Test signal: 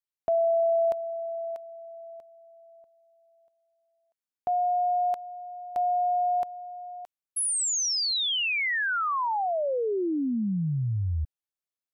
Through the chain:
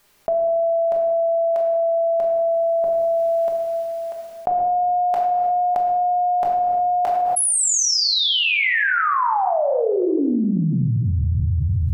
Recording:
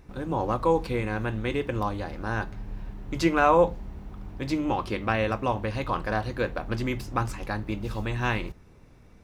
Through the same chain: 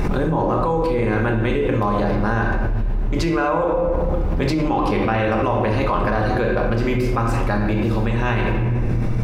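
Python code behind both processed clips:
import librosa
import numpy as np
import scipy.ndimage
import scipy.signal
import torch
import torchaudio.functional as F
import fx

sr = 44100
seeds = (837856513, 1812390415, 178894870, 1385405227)

y = fx.high_shelf(x, sr, hz=2300.0, db=-7.5)
y = fx.hum_notches(y, sr, base_hz=50, count=8)
y = fx.rider(y, sr, range_db=5, speed_s=0.5)
y = fx.room_shoebox(y, sr, seeds[0], volume_m3=640.0, walls='mixed', distance_m=1.3)
y = fx.env_flatten(y, sr, amount_pct=100)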